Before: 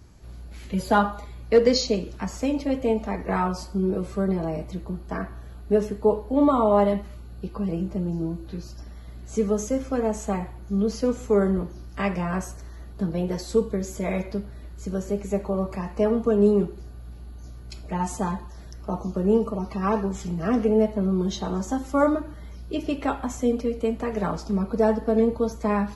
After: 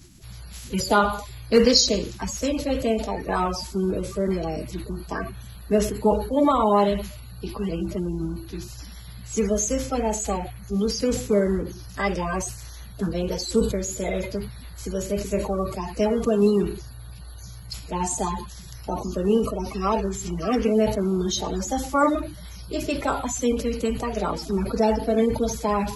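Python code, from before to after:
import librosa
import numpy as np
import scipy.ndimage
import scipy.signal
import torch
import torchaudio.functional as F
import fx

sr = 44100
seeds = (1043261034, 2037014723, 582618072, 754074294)

y = fx.spec_quant(x, sr, step_db=30)
y = fx.high_shelf(y, sr, hz=2700.0, db=11.0)
y = fx.sustainer(y, sr, db_per_s=89.0)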